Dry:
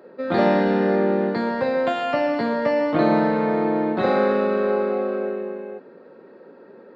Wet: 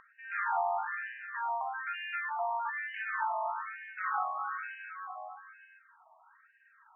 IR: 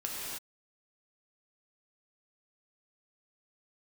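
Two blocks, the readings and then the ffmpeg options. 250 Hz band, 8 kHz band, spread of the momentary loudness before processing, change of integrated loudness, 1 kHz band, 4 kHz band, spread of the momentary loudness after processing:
below −40 dB, can't be measured, 8 LU, −14.0 dB, −7.5 dB, below −15 dB, 11 LU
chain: -filter_complex "[0:a]acompressor=mode=upward:threshold=-40dB:ratio=2.5,asplit=2[link_01][link_02];[1:a]atrim=start_sample=2205,asetrate=70560,aresample=44100[link_03];[link_02][link_03]afir=irnorm=-1:irlink=0,volume=-5.5dB[link_04];[link_01][link_04]amix=inputs=2:normalize=0,afftfilt=real='re*between(b*sr/1024,870*pow(2200/870,0.5+0.5*sin(2*PI*1.1*pts/sr))/1.41,870*pow(2200/870,0.5+0.5*sin(2*PI*1.1*pts/sr))*1.41)':imag='im*between(b*sr/1024,870*pow(2200/870,0.5+0.5*sin(2*PI*1.1*pts/sr))/1.41,870*pow(2200/870,0.5+0.5*sin(2*PI*1.1*pts/sr))*1.41)':win_size=1024:overlap=0.75,volume=-5.5dB"

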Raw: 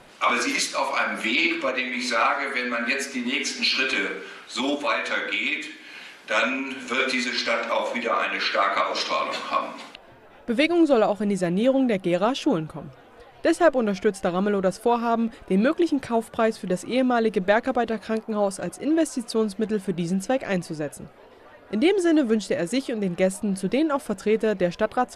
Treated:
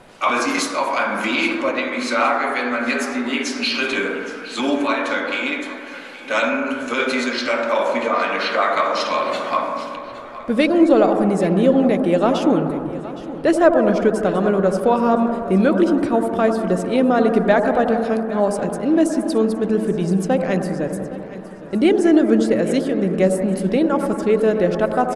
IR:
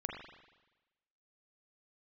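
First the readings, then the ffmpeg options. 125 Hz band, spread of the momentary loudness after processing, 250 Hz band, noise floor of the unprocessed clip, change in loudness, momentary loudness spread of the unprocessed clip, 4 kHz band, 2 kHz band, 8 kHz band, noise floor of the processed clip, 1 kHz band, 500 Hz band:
+6.5 dB, 9 LU, +6.5 dB, −49 dBFS, +5.0 dB, 8 LU, 0.0 dB, +2.0 dB, +1.0 dB, −34 dBFS, +5.0 dB, +6.0 dB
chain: -filter_complex "[0:a]highshelf=frequency=2200:gain=-10,aecho=1:1:816|1632|2448|3264:0.15|0.0673|0.0303|0.0136,asplit=2[link_01][link_02];[1:a]atrim=start_sample=2205,asetrate=22491,aresample=44100,highshelf=frequency=4000:gain=10.5[link_03];[link_02][link_03]afir=irnorm=-1:irlink=0,volume=-1.5dB[link_04];[link_01][link_04]amix=inputs=2:normalize=0,volume=-1dB"

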